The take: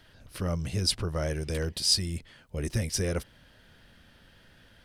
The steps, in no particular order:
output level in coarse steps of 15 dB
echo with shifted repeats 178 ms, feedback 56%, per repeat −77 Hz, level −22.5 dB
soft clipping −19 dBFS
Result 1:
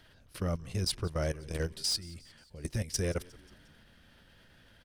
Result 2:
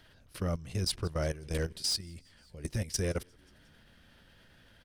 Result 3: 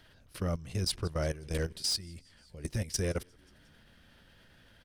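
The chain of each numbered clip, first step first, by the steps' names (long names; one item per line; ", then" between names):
soft clipping, then output level in coarse steps, then echo with shifted repeats
soft clipping, then echo with shifted repeats, then output level in coarse steps
echo with shifted repeats, then soft clipping, then output level in coarse steps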